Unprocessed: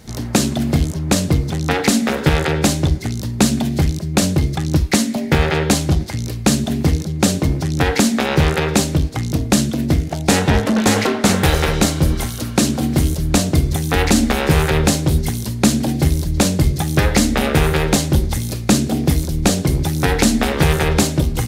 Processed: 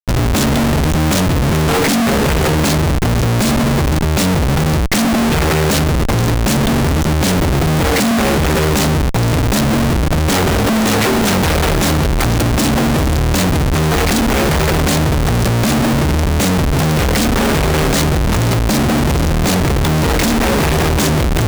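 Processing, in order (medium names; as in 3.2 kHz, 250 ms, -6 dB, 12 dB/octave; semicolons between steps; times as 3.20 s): in parallel at -3 dB: peak limiter -11 dBFS, peak gain reduction 9 dB; on the sum: Schmitt trigger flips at -20.5 dBFS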